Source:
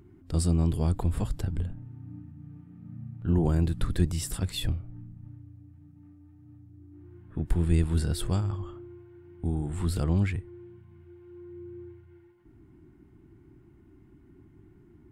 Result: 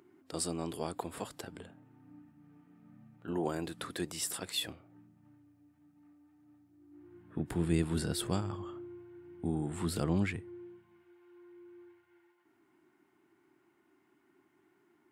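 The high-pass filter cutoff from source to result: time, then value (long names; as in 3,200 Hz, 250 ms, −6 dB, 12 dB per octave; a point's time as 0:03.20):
0:06.78 410 Hz
0:07.38 180 Hz
0:10.49 180 Hz
0:11.14 630 Hz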